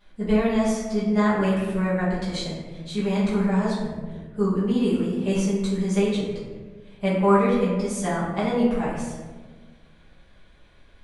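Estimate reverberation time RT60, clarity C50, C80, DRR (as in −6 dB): 1.4 s, 0.5 dB, 3.0 dB, −11.5 dB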